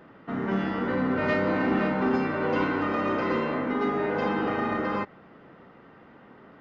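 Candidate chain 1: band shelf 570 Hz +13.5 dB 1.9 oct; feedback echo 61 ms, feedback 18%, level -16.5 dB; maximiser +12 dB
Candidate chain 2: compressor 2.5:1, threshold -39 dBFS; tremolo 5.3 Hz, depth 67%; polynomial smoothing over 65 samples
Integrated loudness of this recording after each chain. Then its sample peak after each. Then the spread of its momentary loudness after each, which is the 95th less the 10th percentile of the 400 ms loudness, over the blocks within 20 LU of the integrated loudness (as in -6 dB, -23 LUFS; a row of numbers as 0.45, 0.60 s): -9.5, -41.0 LUFS; -1.0, -27.5 dBFS; 4, 16 LU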